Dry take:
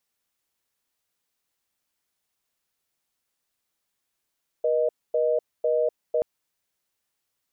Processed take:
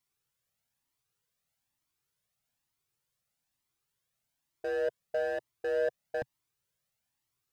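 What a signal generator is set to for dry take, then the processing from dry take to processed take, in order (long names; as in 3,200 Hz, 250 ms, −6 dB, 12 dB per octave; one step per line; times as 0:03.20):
call progress tone reorder tone, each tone −22.5 dBFS 1.58 s
parametric band 130 Hz +11 dB 0.99 octaves
hard clipping −22.5 dBFS
flanger whose copies keep moving one way rising 1.1 Hz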